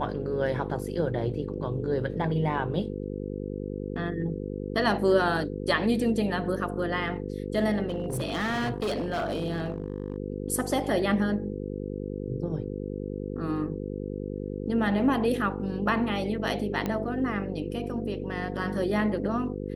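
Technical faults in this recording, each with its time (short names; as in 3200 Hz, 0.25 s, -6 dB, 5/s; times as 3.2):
buzz 50 Hz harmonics 10 -34 dBFS
7.88–10.16 clipped -25 dBFS
16.86 pop -16 dBFS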